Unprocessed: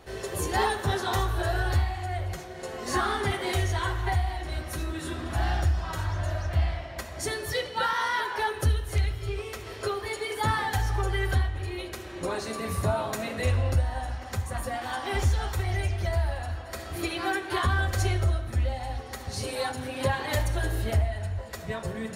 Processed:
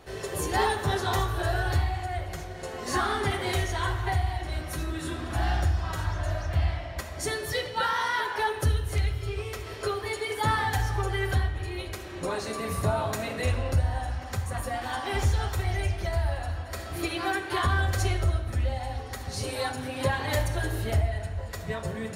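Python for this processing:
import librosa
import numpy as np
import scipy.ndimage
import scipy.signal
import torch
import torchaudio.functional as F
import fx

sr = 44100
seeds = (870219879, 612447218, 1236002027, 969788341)

y = fx.room_shoebox(x, sr, seeds[0], volume_m3=530.0, walls='mixed', distance_m=0.38)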